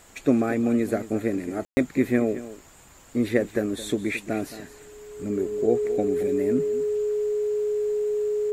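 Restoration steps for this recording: notch 420 Hz, Q 30; room tone fill 1.65–1.77; inverse comb 0.219 s -15 dB

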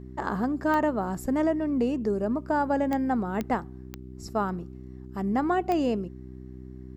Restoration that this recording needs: de-click; de-hum 63.6 Hz, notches 6

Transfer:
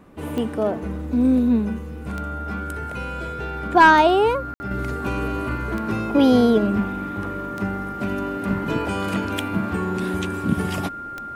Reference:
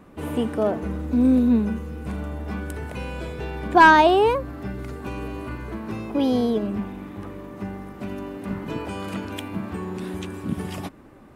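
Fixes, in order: de-click; notch 1400 Hz, Q 30; room tone fill 4.54–4.6; gain 0 dB, from 4.71 s -6 dB

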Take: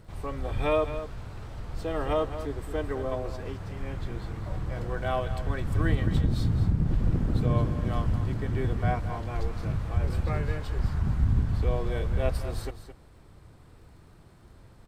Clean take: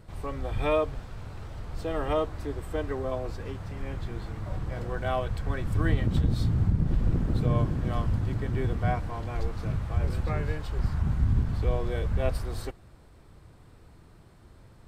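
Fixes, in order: de-click; inverse comb 0.216 s -11.5 dB

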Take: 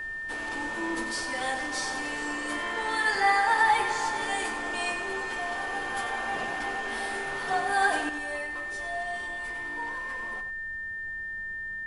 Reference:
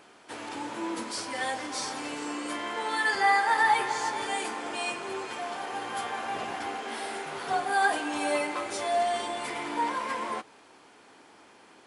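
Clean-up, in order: notch 1800 Hz, Q 30; noise print and reduce 19 dB; inverse comb 94 ms -10 dB; gain correction +10 dB, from 8.09

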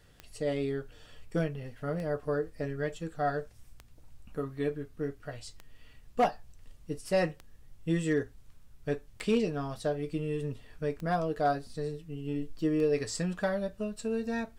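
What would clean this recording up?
clip repair -19 dBFS; de-click

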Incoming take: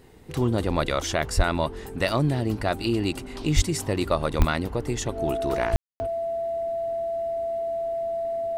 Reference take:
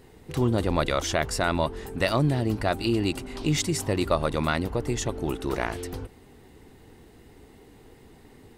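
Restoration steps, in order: de-click; notch 670 Hz, Q 30; de-plosive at 1.36/3.55/4.38/5.72; room tone fill 5.76–6

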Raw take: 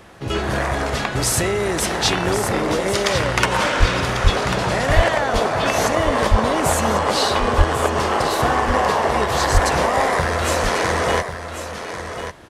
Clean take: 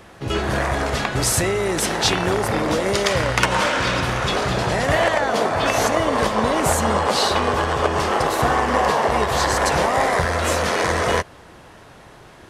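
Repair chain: de-plosive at 3.79/4.23/4.95/6.3/7.57/9.53; inverse comb 1.094 s -9.5 dB

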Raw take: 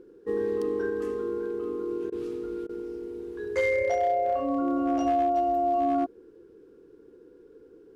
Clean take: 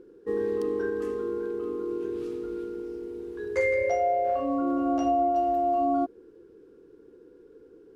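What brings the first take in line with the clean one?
clip repair -19 dBFS; interpolate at 2.1/2.67, 21 ms

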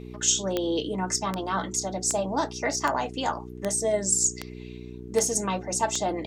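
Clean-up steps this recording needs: de-click; de-hum 61.1 Hz, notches 7

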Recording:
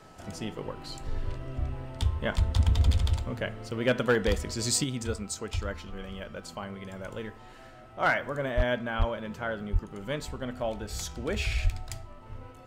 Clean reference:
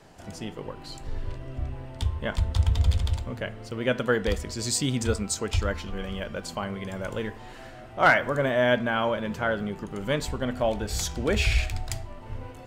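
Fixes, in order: clip repair -16 dBFS; notch 1300 Hz, Q 30; de-plosive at 8.56/8.98/9.72/11.63; gain 0 dB, from 4.84 s +6.5 dB

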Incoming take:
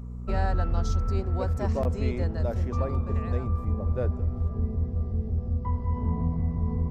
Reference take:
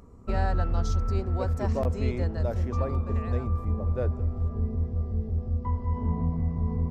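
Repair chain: de-hum 60.3 Hz, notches 4

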